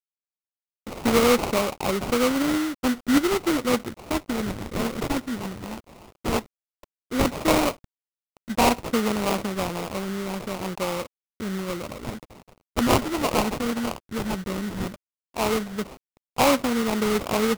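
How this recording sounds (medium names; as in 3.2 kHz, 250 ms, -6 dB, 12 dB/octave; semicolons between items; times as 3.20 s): a quantiser's noise floor 8-bit, dither none; phasing stages 12, 0.13 Hz, lowest notch 630–2200 Hz; aliases and images of a low sample rate 1.7 kHz, jitter 20%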